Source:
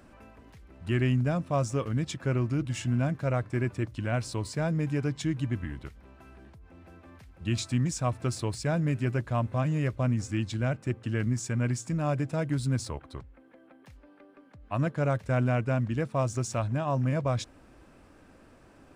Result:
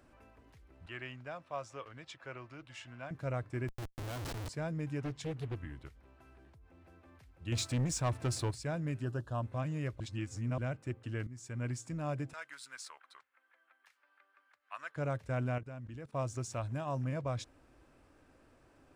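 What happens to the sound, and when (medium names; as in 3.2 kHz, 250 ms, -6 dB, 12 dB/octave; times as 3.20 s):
0.86–3.11 s: three-band isolator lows -17 dB, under 540 Hz, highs -13 dB, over 4.9 kHz
3.68–4.49 s: Schmitt trigger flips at -36.5 dBFS
5.01–5.56 s: loudspeaker Doppler distortion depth 0.91 ms
7.52–8.51 s: waveshaping leveller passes 2
9.02–9.43 s: Butterworth band-stop 2.2 kHz, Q 2.1
10.00–10.58 s: reverse
11.27–11.67 s: fade in, from -16 dB
12.33–14.96 s: resonant high-pass 1.4 kHz, resonance Q 1.7
15.58–16.13 s: level held to a coarse grid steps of 18 dB
16.64–17.04 s: treble shelf 7.8 kHz +10 dB
whole clip: peaking EQ 200 Hz -9.5 dB 0.28 oct; trim -8 dB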